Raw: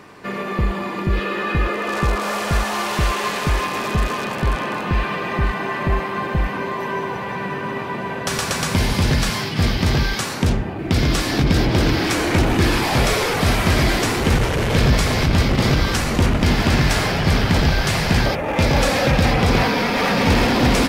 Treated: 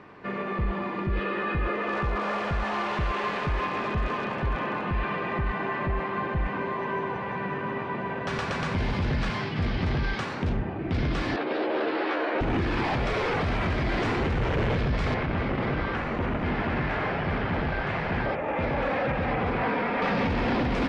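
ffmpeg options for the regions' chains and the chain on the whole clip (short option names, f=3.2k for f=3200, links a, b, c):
-filter_complex "[0:a]asettb=1/sr,asplit=3[a][b][c];[a]atrim=end=11.364[d];[b]atrim=start=11.36:end=12.41,asetpts=PTS-STARTPTS,afade=t=in:d=0.004:c=qsin,afade=t=out:st=1.046:d=0.004:c=qsin,highpass=f=350:w=0.5412,highpass=f=350:w=1.3066,equalizer=f=550:t=q:w=4:g=4,equalizer=f=2.2k:t=q:w=4:g=-5,equalizer=f=3.3k:t=q:w=4:g=-4,lowpass=f=3.9k:w=0.5412,lowpass=f=3.9k:w=1.3066,asplit=2[e][f];[f]adelay=13,volume=-2dB[g];[e][g]amix=inputs=2:normalize=0,atrim=end_sample=46305[h];[c]atrim=start=12.406[i];[d][h]acrossfade=d=0.004:c1=hsin:c2=qsin[j];[j][i]acrossfade=d=0.004:c1=qsin:c2=hsin,asettb=1/sr,asplit=3[k][l][m];[k]atrim=end=15.144[n];[l]atrim=start=15.14:end=20.02,asetpts=PTS-STARTPTS,afade=t=in:d=0.004:c=qsin,afade=t=out:st=4.876:d=0.004:c=qsin,lowshelf=f=170:g=-9.5,acrossover=split=2900[o][p];[p]acompressor=threshold=-43dB:ratio=4:attack=1:release=60[q];[o][q]amix=inputs=2:normalize=0[r];[m]atrim=start=20.016[s];[n][r]acrossfade=d=0.004:c1=hsin:c2=qsin[t];[t][s]acrossfade=d=0.004:c1=qsin:c2=hsin,lowpass=2.6k,alimiter=limit=-14.5dB:level=0:latency=1:release=10,volume=-5dB"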